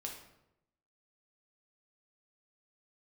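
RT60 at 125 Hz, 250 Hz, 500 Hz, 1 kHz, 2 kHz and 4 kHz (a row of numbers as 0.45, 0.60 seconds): 1.0, 0.95, 0.90, 0.80, 0.70, 0.55 seconds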